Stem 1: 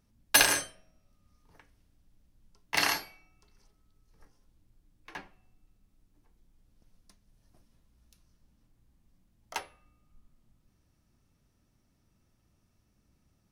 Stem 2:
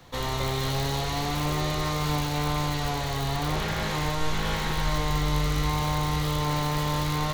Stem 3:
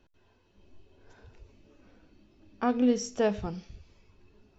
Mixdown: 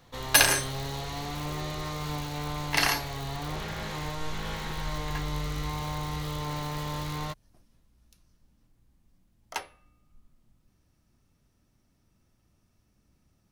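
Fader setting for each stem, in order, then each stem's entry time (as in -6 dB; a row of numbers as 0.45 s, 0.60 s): +2.0 dB, -7.0 dB, mute; 0.00 s, 0.00 s, mute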